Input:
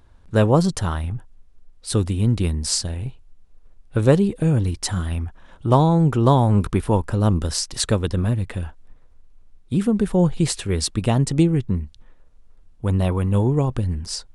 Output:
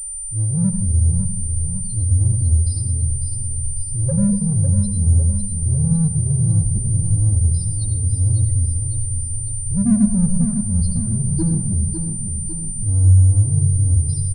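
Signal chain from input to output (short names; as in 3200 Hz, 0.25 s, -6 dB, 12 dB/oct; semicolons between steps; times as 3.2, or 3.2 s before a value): recorder AGC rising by 5 dB/s; loudest bins only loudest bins 1; low shelf 290 Hz +10 dB; comb 3.7 ms, depth 64%; transient shaper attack -8 dB, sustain -2 dB; elliptic band-stop 470–2400 Hz; in parallel at -3.5 dB: soft clip -27.5 dBFS, distortion -7 dB; on the sum: feedback echo 0.552 s, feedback 54%, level -7.5 dB; on a send at -7 dB: reverb RT60 0.45 s, pre-delay 79 ms; on the sum: pulse-width modulation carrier 9100 Hz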